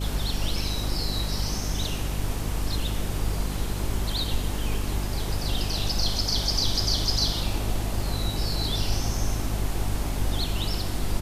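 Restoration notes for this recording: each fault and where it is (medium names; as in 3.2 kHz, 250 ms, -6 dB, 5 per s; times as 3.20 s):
hum 50 Hz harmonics 6 -30 dBFS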